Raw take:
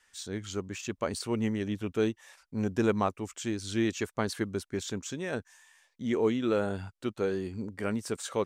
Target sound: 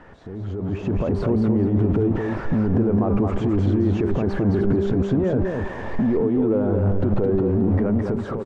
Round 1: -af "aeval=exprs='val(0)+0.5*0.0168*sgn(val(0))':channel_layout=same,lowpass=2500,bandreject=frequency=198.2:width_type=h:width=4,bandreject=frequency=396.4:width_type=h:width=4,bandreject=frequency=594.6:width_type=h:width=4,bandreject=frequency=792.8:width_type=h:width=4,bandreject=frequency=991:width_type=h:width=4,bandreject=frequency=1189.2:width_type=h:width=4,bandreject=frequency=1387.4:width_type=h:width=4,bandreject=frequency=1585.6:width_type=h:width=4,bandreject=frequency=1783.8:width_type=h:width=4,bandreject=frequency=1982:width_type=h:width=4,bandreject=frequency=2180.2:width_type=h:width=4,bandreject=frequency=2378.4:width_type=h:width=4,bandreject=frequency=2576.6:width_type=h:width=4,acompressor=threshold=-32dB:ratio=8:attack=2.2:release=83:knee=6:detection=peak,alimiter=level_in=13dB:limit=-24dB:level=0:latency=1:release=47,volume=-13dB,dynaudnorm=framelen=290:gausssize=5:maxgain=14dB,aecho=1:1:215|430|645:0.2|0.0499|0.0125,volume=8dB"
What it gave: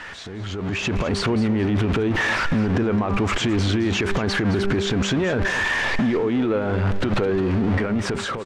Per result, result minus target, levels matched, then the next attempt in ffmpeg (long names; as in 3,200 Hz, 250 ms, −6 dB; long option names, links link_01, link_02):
2,000 Hz band +15.0 dB; echo-to-direct −9.5 dB
-af "aeval=exprs='val(0)+0.5*0.0168*sgn(val(0))':channel_layout=same,lowpass=630,bandreject=frequency=198.2:width_type=h:width=4,bandreject=frequency=396.4:width_type=h:width=4,bandreject=frequency=594.6:width_type=h:width=4,bandreject=frequency=792.8:width_type=h:width=4,bandreject=frequency=991:width_type=h:width=4,bandreject=frequency=1189.2:width_type=h:width=4,bandreject=frequency=1387.4:width_type=h:width=4,bandreject=frequency=1585.6:width_type=h:width=4,bandreject=frequency=1783.8:width_type=h:width=4,bandreject=frequency=1982:width_type=h:width=4,bandreject=frequency=2180.2:width_type=h:width=4,bandreject=frequency=2378.4:width_type=h:width=4,bandreject=frequency=2576.6:width_type=h:width=4,acompressor=threshold=-32dB:ratio=8:attack=2.2:release=83:knee=6:detection=peak,alimiter=level_in=13dB:limit=-24dB:level=0:latency=1:release=47,volume=-13dB,dynaudnorm=framelen=290:gausssize=5:maxgain=14dB,aecho=1:1:215|430|645:0.2|0.0499|0.0125,volume=8dB"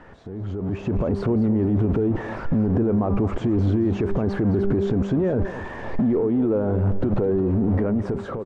echo-to-direct −9.5 dB
-af "aeval=exprs='val(0)+0.5*0.0168*sgn(val(0))':channel_layout=same,lowpass=630,bandreject=frequency=198.2:width_type=h:width=4,bandreject=frequency=396.4:width_type=h:width=4,bandreject=frequency=594.6:width_type=h:width=4,bandreject=frequency=792.8:width_type=h:width=4,bandreject=frequency=991:width_type=h:width=4,bandreject=frequency=1189.2:width_type=h:width=4,bandreject=frequency=1387.4:width_type=h:width=4,bandreject=frequency=1585.6:width_type=h:width=4,bandreject=frequency=1783.8:width_type=h:width=4,bandreject=frequency=1982:width_type=h:width=4,bandreject=frequency=2180.2:width_type=h:width=4,bandreject=frequency=2378.4:width_type=h:width=4,bandreject=frequency=2576.6:width_type=h:width=4,acompressor=threshold=-32dB:ratio=8:attack=2.2:release=83:knee=6:detection=peak,alimiter=level_in=13dB:limit=-24dB:level=0:latency=1:release=47,volume=-13dB,dynaudnorm=framelen=290:gausssize=5:maxgain=14dB,aecho=1:1:215|430|645:0.596|0.149|0.0372,volume=8dB"